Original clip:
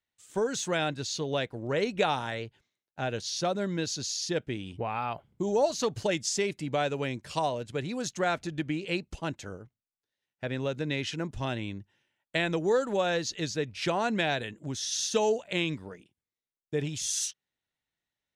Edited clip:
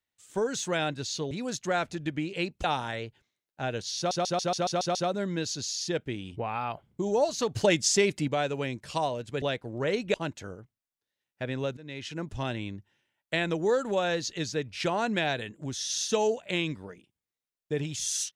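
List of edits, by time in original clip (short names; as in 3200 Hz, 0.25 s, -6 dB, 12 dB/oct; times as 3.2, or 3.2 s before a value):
1.31–2.03 swap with 7.83–9.16
3.36 stutter 0.14 s, 8 plays
5.97–6.69 gain +5.5 dB
10.79–11.33 fade in, from -19.5 dB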